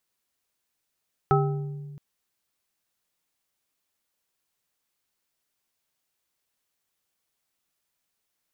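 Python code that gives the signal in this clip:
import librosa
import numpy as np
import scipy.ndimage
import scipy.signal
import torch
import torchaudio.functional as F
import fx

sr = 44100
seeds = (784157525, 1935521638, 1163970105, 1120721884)

y = fx.strike_glass(sr, length_s=0.67, level_db=-19.5, body='bar', hz=145.0, decay_s=1.94, tilt_db=0.5, modes=4)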